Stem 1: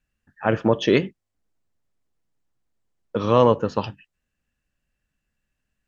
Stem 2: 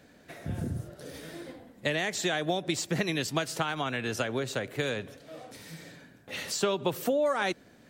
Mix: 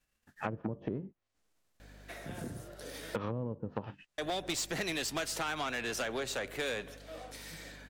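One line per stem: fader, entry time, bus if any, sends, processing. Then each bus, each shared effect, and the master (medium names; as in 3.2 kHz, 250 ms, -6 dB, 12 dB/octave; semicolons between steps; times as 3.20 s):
-3.5 dB, 0.00 s, no send, formants flattened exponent 0.6; low-pass that closes with the level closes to 360 Hz, closed at -16.5 dBFS; compression 8:1, threshold -29 dBFS, peak gain reduction 14 dB
+2.0 dB, 1.80 s, muted 3.16–4.18 s, no send, high-pass 520 Hz 6 dB/octave; hum 50 Hz, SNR 21 dB; valve stage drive 31 dB, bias 0.25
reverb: none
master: none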